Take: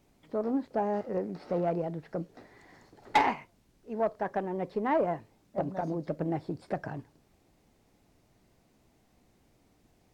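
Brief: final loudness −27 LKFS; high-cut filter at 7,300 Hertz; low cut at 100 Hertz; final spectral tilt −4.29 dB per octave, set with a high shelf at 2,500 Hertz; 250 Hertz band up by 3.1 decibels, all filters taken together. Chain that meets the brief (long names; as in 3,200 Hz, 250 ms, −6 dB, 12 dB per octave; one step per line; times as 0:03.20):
high-pass filter 100 Hz
low-pass filter 7,300 Hz
parametric band 250 Hz +4.5 dB
high-shelf EQ 2,500 Hz −6 dB
level +4.5 dB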